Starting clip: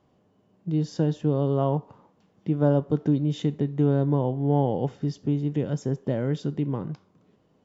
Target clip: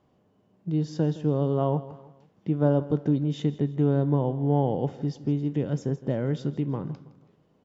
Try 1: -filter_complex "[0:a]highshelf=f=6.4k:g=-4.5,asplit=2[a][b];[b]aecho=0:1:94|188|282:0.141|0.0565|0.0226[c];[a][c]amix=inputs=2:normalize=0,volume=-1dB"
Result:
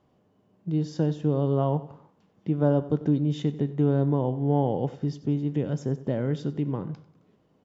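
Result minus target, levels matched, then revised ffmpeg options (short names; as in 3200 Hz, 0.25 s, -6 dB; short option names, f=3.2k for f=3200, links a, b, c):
echo 69 ms early
-filter_complex "[0:a]highshelf=f=6.4k:g=-4.5,asplit=2[a][b];[b]aecho=0:1:163|326|489:0.141|0.0565|0.0226[c];[a][c]amix=inputs=2:normalize=0,volume=-1dB"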